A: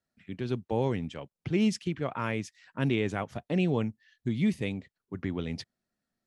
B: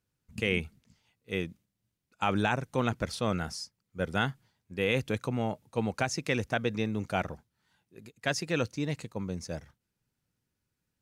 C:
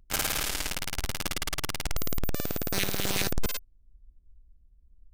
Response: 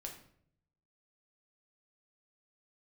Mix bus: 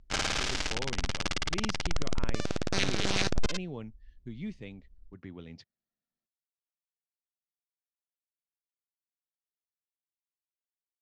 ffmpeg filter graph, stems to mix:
-filter_complex "[0:a]volume=0.251[s0];[2:a]volume=1.06[s1];[s0][s1]amix=inputs=2:normalize=0,lowpass=f=6400:w=0.5412,lowpass=f=6400:w=1.3066"

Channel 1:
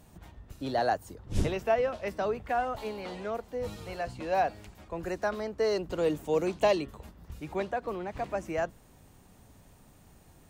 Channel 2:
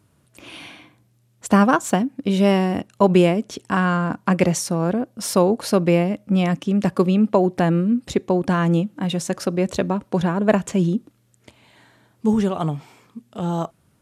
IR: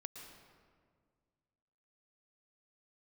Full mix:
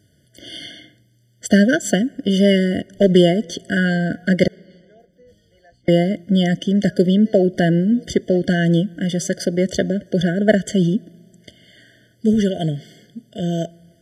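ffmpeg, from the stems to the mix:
-filter_complex "[0:a]adelay=1650,volume=0.158[s0];[1:a]asoftclip=type=hard:threshold=0.596,volume=1.26,asplit=3[s1][s2][s3];[s1]atrim=end=4.48,asetpts=PTS-STARTPTS,afade=t=out:st=4.476:d=0.004:c=hsin[s4];[s2]atrim=start=4.48:end=5.88,asetpts=PTS-STARTPTS,volume=0[s5];[s3]atrim=start=5.88,asetpts=PTS-STARTPTS,afade=t=in:d=0.004:c=hsin[s6];[s4][s5][s6]concat=n=3:v=0:a=1,asplit=2[s7][s8];[s8]volume=0.0944[s9];[2:a]atrim=start_sample=2205[s10];[s9][s10]afir=irnorm=-1:irlink=0[s11];[s0][s7][s11]amix=inputs=3:normalize=0,equalizer=f=4100:t=o:w=1.7:g=8.5,afftfilt=real='re*eq(mod(floor(b*sr/1024/720),2),0)':imag='im*eq(mod(floor(b*sr/1024/720),2),0)':win_size=1024:overlap=0.75"

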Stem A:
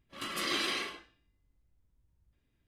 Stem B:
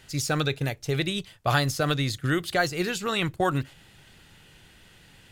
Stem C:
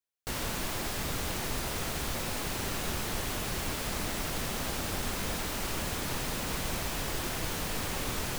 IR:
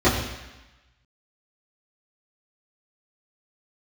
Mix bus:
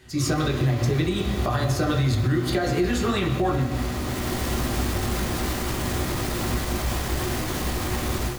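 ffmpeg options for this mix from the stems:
-filter_complex "[0:a]acompressor=threshold=0.0112:ratio=6,volume=0.224,asplit=2[s0][s1];[s1]volume=0.251[s2];[1:a]acompressor=threshold=0.0355:ratio=6,flanger=delay=7.6:depth=5.3:regen=61:speed=1.5:shape=triangular,volume=1.06,asplit=3[s3][s4][s5];[s4]volume=0.15[s6];[2:a]alimiter=level_in=1.5:limit=0.0631:level=0:latency=1:release=109,volume=0.668,asoftclip=type=tanh:threshold=0.0188,volume=0.944,asplit=2[s7][s8];[s8]volume=0.0891[s9];[s5]apad=whole_len=369643[s10];[s7][s10]sidechaincompress=threshold=0.00447:ratio=8:attack=16:release=717[s11];[3:a]atrim=start_sample=2205[s12];[s2][s6][s9]amix=inputs=3:normalize=0[s13];[s13][s12]afir=irnorm=-1:irlink=0[s14];[s0][s3][s11][s14]amix=inputs=4:normalize=0,dynaudnorm=f=150:g=3:m=2.99,alimiter=limit=0.2:level=0:latency=1:release=156"

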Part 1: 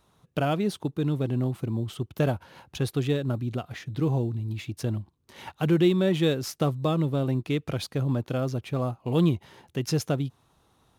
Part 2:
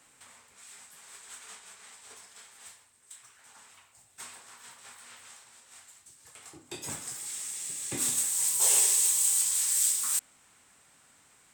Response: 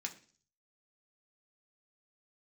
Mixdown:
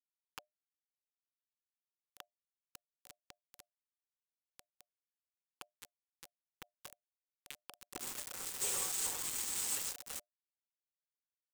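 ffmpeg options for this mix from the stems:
-filter_complex "[0:a]highpass=f=680:w=0.5412,highpass=f=680:w=1.3066,acompressor=threshold=0.0112:ratio=10,volume=0.501,asplit=2[s0][s1];[1:a]acrusher=bits=7:dc=4:mix=0:aa=0.000001,firequalizer=gain_entry='entry(380,0);entry(1700,-25);entry(2900,-10)':delay=0.05:min_phase=1,asplit=2[s2][s3];[s3]adelay=5,afreqshift=-1.4[s4];[s2][s4]amix=inputs=2:normalize=1,volume=1.06,asplit=2[s5][s6];[s6]volume=0.708[s7];[s1]apad=whole_len=513510[s8];[s5][s8]sidechaincompress=threshold=0.00141:ratio=6:attack=6.6:release=298[s9];[2:a]atrim=start_sample=2205[s10];[s7][s10]afir=irnorm=-1:irlink=0[s11];[s0][s9][s11]amix=inputs=3:normalize=0,highpass=f=250:w=0.5412,highpass=f=250:w=1.3066,acrusher=bits=5:mix=0:aa=0.000001,asuperstop=centerf=650:order=20:qfactor=6.8"

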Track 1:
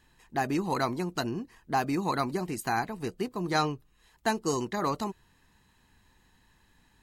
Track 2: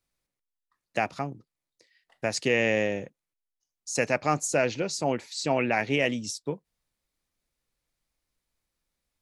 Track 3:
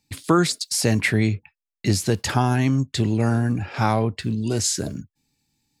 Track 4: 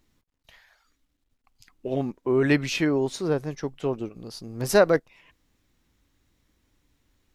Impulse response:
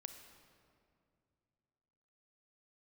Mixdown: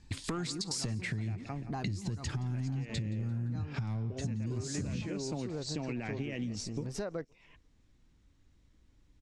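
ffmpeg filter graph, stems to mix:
-filter_complex "[0:a]lowshelf=f=350:g=8.5,volume=0.447[s0];[1:a]equalizer=f=160:t=o:w=1:g=-5.5,alimiter=limit=0.133:level=0:latency=1,adelay=300,volume=0.562,asplit=2[s1][s2];[s2]volume=0.1[s3];[2:a]acompressor=threshold=0.0158:ratio=1.5,asoftclip=type=tanh:threshold=0.119,volume=1.26,asplit=3[s4][s5][s6];[s5]volume=0.0794[s7];[3:a]adelay=2250,volume=0.562[s8];[s6]apad=whole_len=309732[s9];[s0][s9]sidechaincompress=threshold=0.0112:ratio=8:attack=16:release=124[s10];[s10][s8]amix=inputs=2:normalize=0,lowshelf=f=260:g=9.5,acompressor=threshold=0.0178:ratio=2.5,volume=1[s11];[s1][s4]amix=inputs=2:normalize=0,asubboost=boost=8.5:cutoff=220,acompressor=threshold=0.0501:ratio=2.5,volume=1[s12];[s3][s7]amix=inputs=2:normalize=0,aecho=0:1:172|344|516|688|860|1032:1|0.44|0.194|0.0852|0.0375|0.0165[s13];[s11][s12][s13]amix=inputs=3:normalize=0,lowpass=f=8500:w=0.5412,lowpass=f=8500:w=1.3066,acompressor=threshold=0.0224:ratio=6"

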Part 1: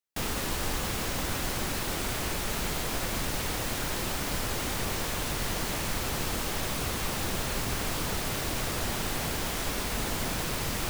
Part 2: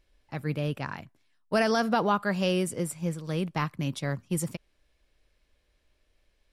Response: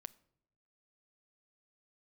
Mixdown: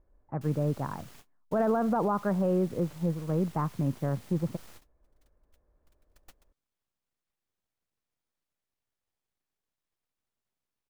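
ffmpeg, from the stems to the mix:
-filter_complex "[0:a]aeval=exprs='abs(val(0))':c=same,adelay=250,volume=0.473,afade=t=in:st=5.6:d=0.7:silence=0.237137[s0];[1:a]lowpass=f=1200:w=0.5412,lowpass=f=1200:w=1.3066,volume=1.26,asplit=2[s1][s2];[s2]apad=whole_len=491558[s3];[s0][s3]sidechaingate=range=0.00282:threshold=0.00112:ratio=16:detection=peak[s4];[s4][s1]amix=inputs=2:normalize=0,alimiter=limit=0.112:level=0:latency=1:release=24"

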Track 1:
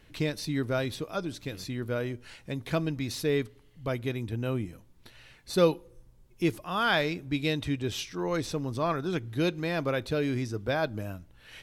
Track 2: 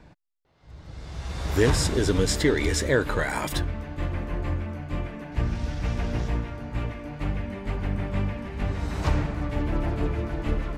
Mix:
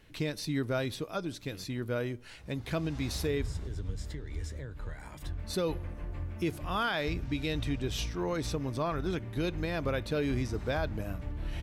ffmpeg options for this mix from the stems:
-filter_complex "[0:a]volume=0.841,asplit=3[s0][s1][s2];[s0]atrim=end=3.77,asetpts=PTS-STARTPTS,afade=t=out:st=3.766:d=0.004:c=hsin[s3];[s1]atrim=start=3.77:end=5.39,asetpts=PTS-STARTPTS,volume=0[s4];[s2]atrim=start=5.39,asetpts=PTS-STARTPTS,afade=t=in:d=0.004:c=hsin[s5];[s3][s4][s5]concat=n=3:v=0:a=1[s6];[1:a]acrossover=split=130[s7][s8];[s8]acompressor=threshold=0.0141:ratio=10[s9];[s7][s9]amix=inputs=2:normalize=0,adelay=1700,volume=0.376[s10];[s6][s10]amix=inputs=2:normalize=0,alimiter=limit=0.0794:level=0:latency=1:release=95"

